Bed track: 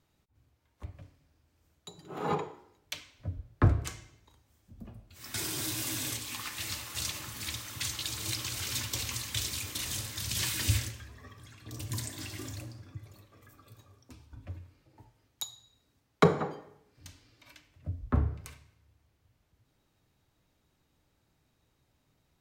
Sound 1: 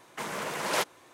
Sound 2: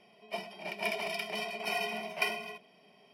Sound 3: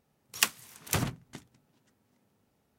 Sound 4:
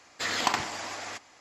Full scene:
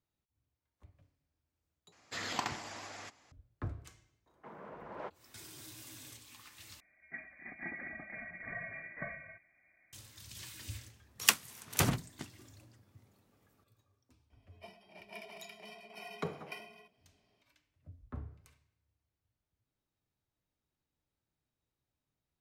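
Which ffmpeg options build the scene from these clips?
-filter_complex "[2:a]asplit=2[a][b];[0:a]volume=-16.5dB[c];[4:a]equalizer=f=110:w=0.59:g=7.5[d];[1:a]lowpass=1.1k[e];[a]lowpass=f=2.2k:t=q:w=0.5098,lowpass=f=2.2k:t=q:w=0.6013,lowpass=f=2.2k:t=q:w=0.9,lowpass=f=2.2k:t=q:w=2.563,afreqshift=-2600[f];[b]lowshelf=f=280:g=4.5[g];[c]asplit=3[h][i][j];[h]atrim=end=1.924[k];[d]atrim=end=1.4,asetpts=PTS-STARTPTS,volume=-10dB[l];[i]atrim=start=3.316:end=6.804[m];[f]atrim=end=3.13,asetpts=PTS-STARTPTS,volume=-7dB[n];[j]atrim=start=9.926[o];[e]atrim=end=1.13,asetpts=PTS-STARTPTS,volume=-12.5dB,afade=t=in:d=0.004:c=hsin,afade=t=out:st=1.126:d=0.004:c=hsin,adelay=4260[p];[3:a]atrim=end=2.78,asetpts=PTS-STARTPTS,afade=t=in:d=0.004:c=hsin,afade=t=out:st=2.776:d=0.004:c=hsin,adelay=10860[q];[g]atrim=end=3.13,asetpts=PTS-STARTPTS,volume=-15.5dB,afade=t=in:d=0.004:c=hsin,afade=t=out:st=3.126:d=0.004:c=hsin,adelay=14300[r];[k][l]acrossfade=d=0.004:c1=hsin:c2=hsin[s];[s][m]acrossfade=d=0.004:c1=hsin:c2=hsin[t];[t][n]acrossfade=d=0.004:c1=hsin:c2=hsin[u];[u][o]acrossfade=d=0.004:c1=hsin:c2=hsin[v];[v][p][q][r]amix=inputs=4:normalize=0"

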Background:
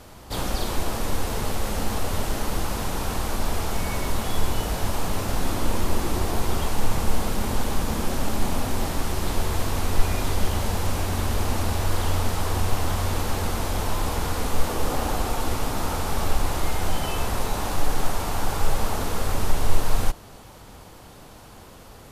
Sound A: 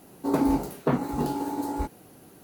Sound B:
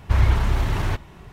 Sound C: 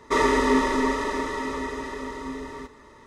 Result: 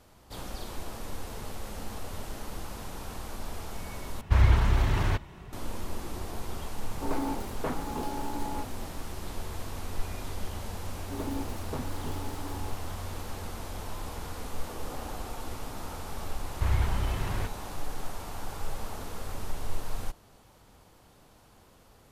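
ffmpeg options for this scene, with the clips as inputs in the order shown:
-filter_complex "[2:a]asplit=2[a][b];[1:a]asplit=2[c][d];[0:a]volume=-12.5dB[e];[c]asplit=2[f][g];[g]highpass=f=720:p=1,volume=15dB,asoftclip=type=tanh:threshold=-10dB[h];[f][h]amix=inputs=2:normalize=0,lowpass=f=3.7k:p=1,volume=-6dB[i];[e]asplit=2[j][k];[j]atrim=end=4.214[l];[a]atrim=end=1.32,asetpts=PTS-STARTPTS,volume=-3dB[m];[k]atrim=start=5.526[n];[i]atrim=end=2.43,asetpts=PTS-STARTPTS,volume=-11.5dB,afade=t=in:d=0.004:c=hsin,afade=t=out:st=2.426:d=0.004:c=hsin,adelay=6770[o];[d]atrim=end=2.43,asetpts=PTS-STARTPTS,volume=-13dB,afade=t=in:d=0.004:c=hsin,afade=t=out:st=2.426:d=0.004:c=hsin,adelay=10860[p];[b]atrim=end=1.32,asetpts=PTS-STARTPTS,volume=-9dB,afade=t=in:d=0.004:c=hsin,afade=t=out:st=1.316:d=0.004:c=hsin,adelay=16510[q];[l][m]acrossfade=d=0.004:c1=hsin:c2=hsin[r];[r][n]acrossfade=d=0.004:c1=hsin:c2=hsin[s];[s][o][p][q]amix=inputs=4:normalize=0"

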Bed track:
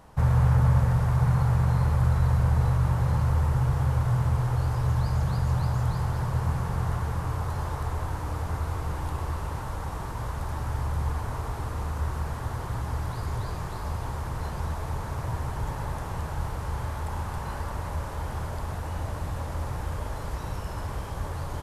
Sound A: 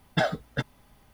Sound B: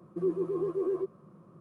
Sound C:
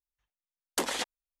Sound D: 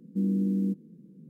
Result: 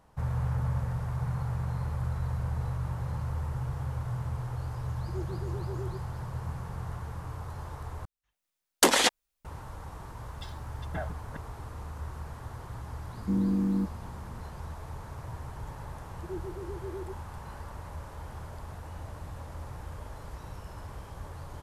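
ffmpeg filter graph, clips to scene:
-filter_complex "[2:a]asplit=2[a][b];[0:a]volume=-9.5dB[c];[3:a]dynaudnorm=f=200:g=3:m=16.5dB[d];[1:a]acrossover=split=2500[e][f];[e]adelay=530[g];[g][f]amix=inputs=2:normalize=0[h];[b]asuperpass=centerf=290:order=4:qfactor=0.87[i];[c]asplit=2[j][k];[j]atrim=end=8.054[l];[d]atrim=end=1.4,asetpts=PTS-STARTPTS,volume=-5dB[m];[k]atrim=start=9.446[n];[a]atrim=end=1.6,asetpts=PTS-STARTPTS,volume=-11dB,afade=t=in:d=0.004:c=hsin,afade=t=out:st=1.596:d=0.004:c=hsin,adelay=4920[o];[h]atrim=end=1.13,asetpts=PTS-STARTPTS,volume=-12dB,afade=t=in:d=0.004:c=hsin,afade=t=out:st=1.126:d=0.004:c=hsin,adelay=10240[p];[4:a]atrim=end=1.29,asetpts=PTS-STARTPTS,volume=-0.5dB,afade=t=in:d=0.004:c=hsin,afade=t=out:st=1.286:d=0.004:c=hsin,adelay=13120[q];[i]atrim=end=1.6,asetpts=PTS-STARTPTS,volume=-9.5dB,afade=t=in:d=0.004:c=hsin,afade=t=out:st=1.596:d=0.004:c=hsin,adelay=16070[r];[l][m]acrossfade=d=0.004:c1=hsin:c2=hsin[s];[s][n]acrossfade=d=0.004:c1=hsin:c2=hsin[t];[t][o][p][q][r]amix=inputs=5:normalize=0"

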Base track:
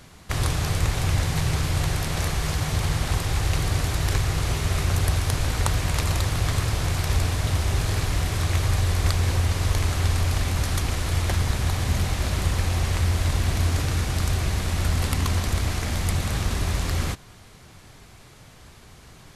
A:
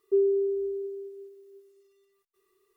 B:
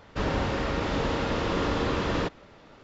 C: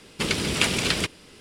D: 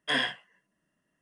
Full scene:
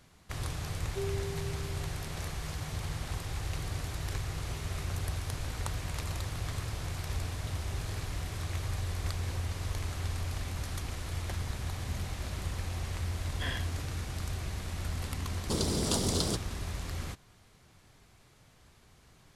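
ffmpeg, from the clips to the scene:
-filter_complex "[0:a]volume=-12.5dB[a];[3:a]asuperstop=centerf=2100:order=4:qfactor=0.65[b];[1:a]atrim=end=2.76,asetpts=PTS-STARTPTS,volume=-14.5dB,afade=t=in:d=0.004:c=hsin,afade=t=out:st=2.756:d=0.004:c=hsin,adelay=840[c];[4:a]atrim=end=1.21,asetpts=PTS-STARTPTS,volume=-11dB,afade=t=in:d=0.004:c=hsin,afade=t=out:st=1.206:d=0.004:c=hsin,adelay=587412S[d];[b]atrim=end=1.4,asetpts=PTS-STARTPTS,volume=-3.5dB,afade=t=in:d=0.004:c=hsin,afade=t=out:st=1.396:d=0.004:c=hsin,adelay=15300[e];[a][c][d][e]amix=inputs=4:normalize=0"

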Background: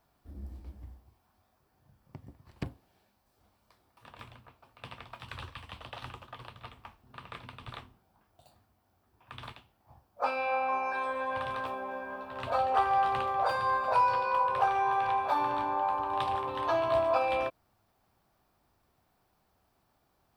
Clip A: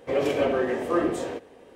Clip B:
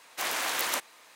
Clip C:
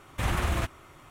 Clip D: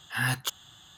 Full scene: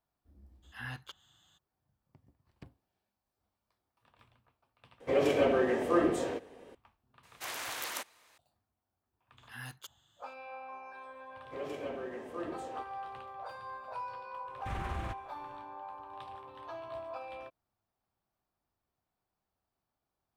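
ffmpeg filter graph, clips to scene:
-filter_complex "[4:a]asplit=2[a][b];[1:a]asplit=2[c][d];[0:a]volume=-15.5dB[e];[a]acrossover=split=4400[f][g];[g]acompressor=threshold=-51dB:ratio=4:attack=1:release=60[h];[f][h]amix=inputs=2:normalize=0[i];[3:a]lowpass=f=2.7k:p=1[j];[e]asplit=2[k][l];[k]atrim=end=5.004[m];[c]atrim=end=1.75,asetpts=PTS-STARTPTS,volume=-3dB[n];[l]atrim=start=6.746[o];[i]atrim=end=0.97,asetpts=PTS-STARTPTS,volume=-14dB,afade=t=in:d=0.02,afade=t=out:st=0.95:d=0.02,adelay=620[p];[2:a]atrim=end=1.15,asetpts=PTS-STARTPTS,volume=-9dB,afade=t=in:d=0.004:c=hsin,afade=t=out:st=1.146:d=0.004:c=hsin,adelay=7230[q];[b]atrim=end=0.97,asetpts=PTS-STARTPTS,volume=-17.5dB,afade=t=in:d=0.004:c=hsin,afade=t=out:st=0.966:d=0.004:c=hsin,adelay=9370[r];[d]atrim=end=1.75,asetpts=PTS-STARTPTS,volume=-16dB,afade=t=in:d=0.004:c=hsin,afade=t=out:st=1.746:d=0.004:c=hsin,adelay=11440[s];[j]atrim=end=1.1,asetpts=PTS-STARTPTS,volume=-10.5dB,afade=t=in:d=0.004:c=hsin,afade=t=out:st=1.096:d=0.004:c=hsin,adelay=14470[t];[m][n]acrossfade=d=0.004:c1=hsin:c2=hsin[u];[u][o]acrossfade=d=0.004:c1=hsin:c2=hsin[v];[v][p][q][r][s][t]amix=inputs=6:normalize=0"

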